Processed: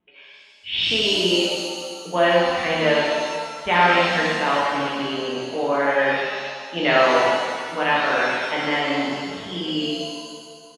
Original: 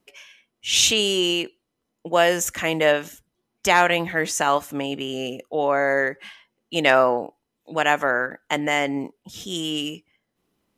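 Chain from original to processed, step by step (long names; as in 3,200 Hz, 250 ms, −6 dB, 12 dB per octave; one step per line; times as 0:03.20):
downsampling to 8,000 Hz
reverb with rising layers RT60 1.8 s, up +7 semitones, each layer −8 dB, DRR −6.5 dB
level −6 dB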